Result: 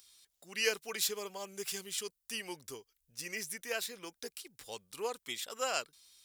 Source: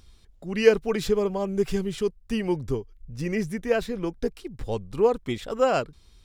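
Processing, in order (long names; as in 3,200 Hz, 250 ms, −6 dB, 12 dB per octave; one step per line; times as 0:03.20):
first difference
level +6 dB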